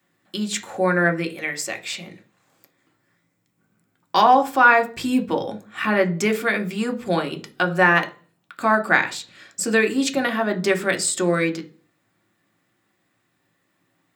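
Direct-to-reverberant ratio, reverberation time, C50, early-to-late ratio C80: 5.0 dB, 0.40 s, 16.5 dB, 22.5 dB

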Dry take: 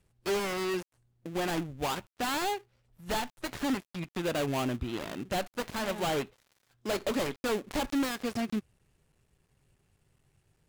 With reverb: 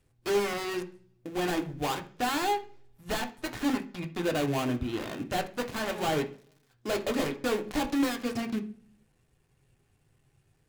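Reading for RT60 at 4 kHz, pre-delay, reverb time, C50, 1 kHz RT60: 0.55 s, 3 ms, 0.45 s, 14.5 dB, 0.40 s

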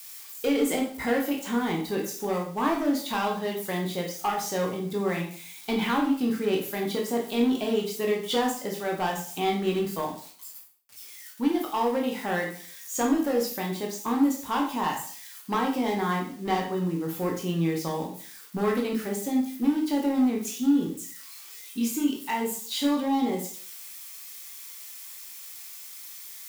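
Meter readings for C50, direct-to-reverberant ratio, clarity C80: 6.5 dB, -0.5 dB, 11.0 dB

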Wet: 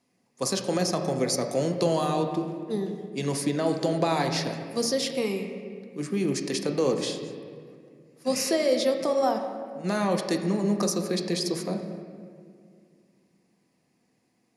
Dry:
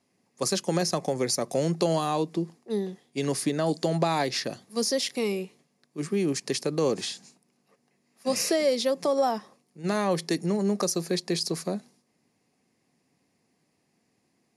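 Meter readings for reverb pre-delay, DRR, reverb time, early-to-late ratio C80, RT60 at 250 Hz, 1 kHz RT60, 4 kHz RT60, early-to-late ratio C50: 4 ms, 4.0 dB, 2.1 s, 8.0 dB, 2.7 s, 1.9 s, 1.4 s, 6.5 dB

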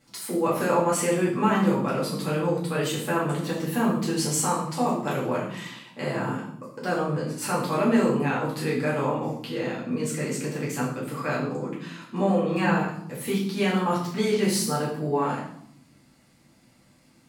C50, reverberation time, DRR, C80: 4.5 dB, 0.75 s, -6.5 dB, 8.0 dB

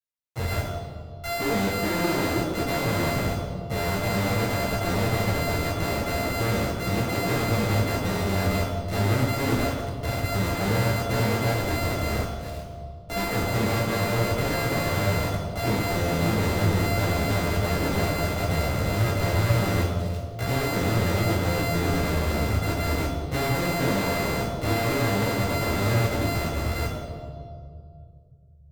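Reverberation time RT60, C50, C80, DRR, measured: 2.3 s, 3.0 dB, 4.5 dB, -8.0 dB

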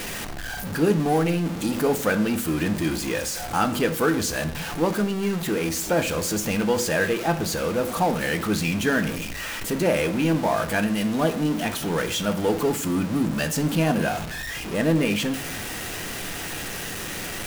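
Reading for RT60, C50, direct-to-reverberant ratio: 0.65 s, 14.0 dB, 8.0 dB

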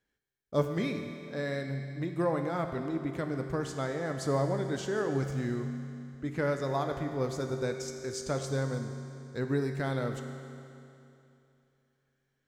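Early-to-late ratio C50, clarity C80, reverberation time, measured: 6.0 dB, 6.5 dB, 2.8 s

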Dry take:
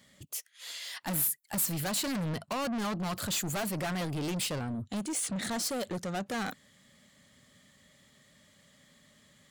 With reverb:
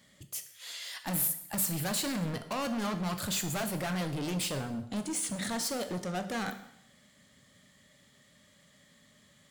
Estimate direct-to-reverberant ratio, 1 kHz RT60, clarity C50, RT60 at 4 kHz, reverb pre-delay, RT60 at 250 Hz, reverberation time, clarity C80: 7.5 dB, 0.75 s, 11.0 dB, 0.70 s, 7 ms, 0.80 s, 0.75 s, 13.5 dB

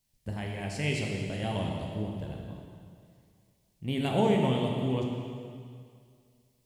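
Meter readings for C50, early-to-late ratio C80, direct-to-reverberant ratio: 1.5 dB, 2.5 dB, -1.0 dB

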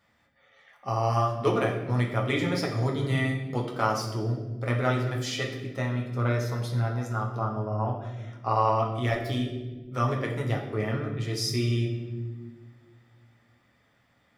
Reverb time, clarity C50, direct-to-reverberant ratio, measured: 1.3 s, 6.0 dB, -0.5 dB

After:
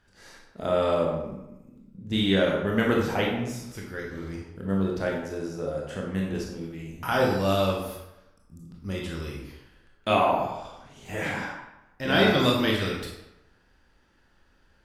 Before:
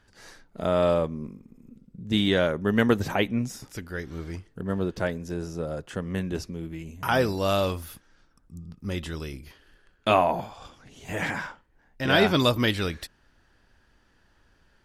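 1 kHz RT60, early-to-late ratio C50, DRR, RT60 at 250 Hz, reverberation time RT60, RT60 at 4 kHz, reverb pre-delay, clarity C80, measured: 0.90 s, 2.5 dB, -2.0 dB, 0.90 s, 0.90 s, 0.60 s, 20 ms, 5.5 dB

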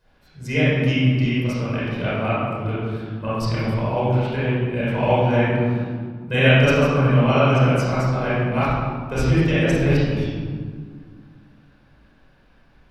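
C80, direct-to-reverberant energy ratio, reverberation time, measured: -1.0 dB, -11.0 dB, 1.8 s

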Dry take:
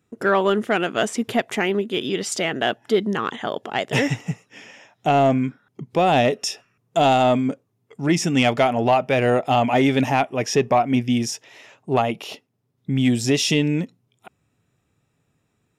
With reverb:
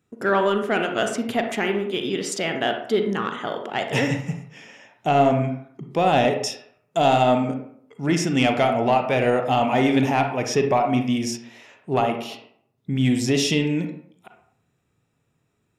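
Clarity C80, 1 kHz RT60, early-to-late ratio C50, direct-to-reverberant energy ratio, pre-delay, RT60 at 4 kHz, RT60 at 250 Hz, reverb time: 10.5 dB, 0.60 s, 6.5 dB, 4.5 dB, 34 ms, 0.40 s, 0.65 s, 0.60 s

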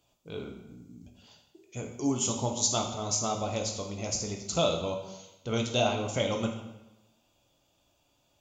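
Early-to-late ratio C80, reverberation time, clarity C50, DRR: 8.5 dB, 1.0 s, 6.0 dB, 2.0 dB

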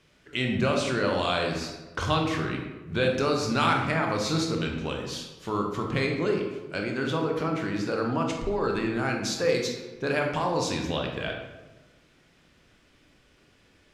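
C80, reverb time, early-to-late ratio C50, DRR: 6.5 dB, 1.2 s, 4.0 dB, 1.0 dB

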